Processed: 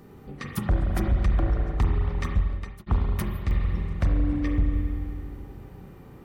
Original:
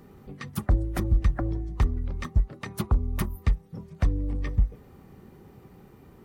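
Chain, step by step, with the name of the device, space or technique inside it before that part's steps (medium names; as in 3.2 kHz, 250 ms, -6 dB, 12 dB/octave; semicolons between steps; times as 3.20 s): 1.93–2.37 s: bass shelf 200 Hz -5 dB; spring tank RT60 2.4 s, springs 34/43 ms, chirp 40 ms, DRR 0 dB; clipper into limiter (hard clipper -15.5 dBFS, distortion -19 dB; peak limiter -17.5 dBFS, peak gain reduction 43.5 dB); trim +1.5 dB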